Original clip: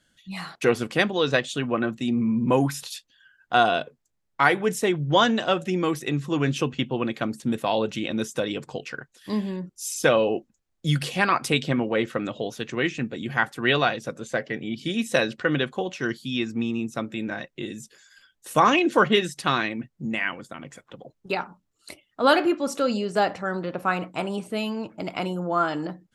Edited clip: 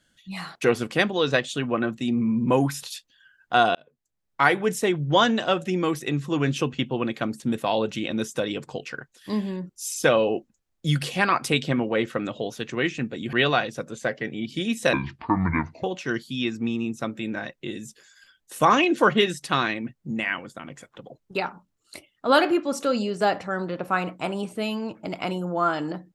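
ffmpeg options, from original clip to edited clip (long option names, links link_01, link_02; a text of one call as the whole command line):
ffmpeg -i in.wav -filter_complex "[0:a]asplit=5[link_01][link_02][link_03][link_04][link_05];[link_01]atrim=end=3.75,asetpts=PTS-STARTPTS,afade=type=out:start_time=3.746:duration=0.004:curve=hsin[link_06];[link_02]atrim=start=3.75:end=13.332,asetpts=PTS-STARTPTS,afade=type=in:duration=0.67[link_07];[link_03]atrim=start=13.618:end=15.224[link_08];[link_04]atrim=start=15.22:end=15.78,asetpts=PTS-STARTPTS,asetrate=27342,aresample=44100,atrim=end_sample=39832,asetpts=PTS-STARTPTS[link_09];[link_05]atrim=start=15.776[link_10];[link_06][link_07]concat=n=2:v=0:a=1[link_11];[link_11][link_08]acrossfade=duration=0.004:curve1=hsin:curve2=hsin[link_12];[link_12][link_09]acrossfade=duration=0.004:curve1=hsin:curve2=hsin[link_13];[link_13][link_10]acrossfade=duration=0.004:curve1=hsin:curve2=hsin" out.wav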